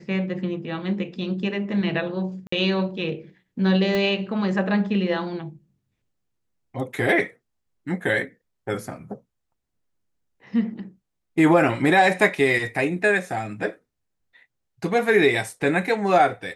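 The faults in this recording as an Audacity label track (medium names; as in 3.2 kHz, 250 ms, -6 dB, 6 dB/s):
2.470000	2.520000	dropout 54 ms
3.950000	3.950000	pop -12 dBFS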